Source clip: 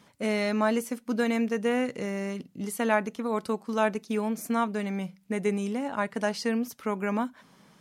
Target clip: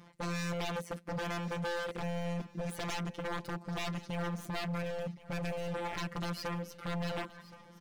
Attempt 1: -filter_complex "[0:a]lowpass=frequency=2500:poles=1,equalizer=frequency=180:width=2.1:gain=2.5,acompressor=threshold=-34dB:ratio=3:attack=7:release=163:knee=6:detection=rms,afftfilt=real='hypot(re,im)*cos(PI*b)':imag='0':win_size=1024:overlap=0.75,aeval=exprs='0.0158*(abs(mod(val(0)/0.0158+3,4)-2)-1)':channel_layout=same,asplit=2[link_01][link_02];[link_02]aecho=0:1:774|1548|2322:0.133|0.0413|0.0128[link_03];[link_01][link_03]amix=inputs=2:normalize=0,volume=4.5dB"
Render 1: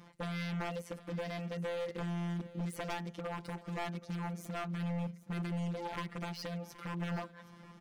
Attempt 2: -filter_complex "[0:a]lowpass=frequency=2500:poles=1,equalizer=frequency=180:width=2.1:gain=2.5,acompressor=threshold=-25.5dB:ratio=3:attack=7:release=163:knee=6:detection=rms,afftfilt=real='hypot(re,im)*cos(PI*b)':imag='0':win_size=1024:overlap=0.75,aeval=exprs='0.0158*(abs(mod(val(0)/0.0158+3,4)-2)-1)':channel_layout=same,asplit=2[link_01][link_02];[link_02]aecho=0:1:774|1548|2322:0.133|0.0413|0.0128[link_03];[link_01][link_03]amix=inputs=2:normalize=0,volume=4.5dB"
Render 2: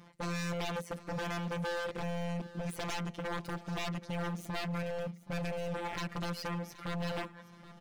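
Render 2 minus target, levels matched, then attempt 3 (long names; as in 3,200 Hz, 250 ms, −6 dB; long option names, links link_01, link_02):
echo 297 ms early
-filter_complex "[0:a]lowpass=frequency=2500:poles=1,equalizer=frequency=180:width=2.1:gain=2.5,acompressor=threshold=-25.5dB:ratio=3:attack=7:release=163:knee=6:detection=rms,afftfilt=real='hypot(re,im)*cos(PI*b)':imag='0':win_size=1024:overlap=0.75,aeval=exprs='0.0158*(abs(mod(val(0)/0.0158+3,4)-2)-1)':channel_layout=same,asplit=2[link_01][link_02];[link_02]aecho=0:1:1071|2142|3213:0.133|0.0413|0.0128[link_03];[link_01][link_03]amix=inputs=2:normalize=0,volume=4.5dB"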